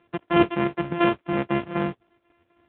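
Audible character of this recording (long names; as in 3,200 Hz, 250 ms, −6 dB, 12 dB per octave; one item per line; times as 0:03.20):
a buzz of ramps at a fixed pitch in blocks of 128 samples
chopped level 4 Hz, depth 65%, duty 70%
a quantiser's noise floor 12 bits, dither none
AMR narrowband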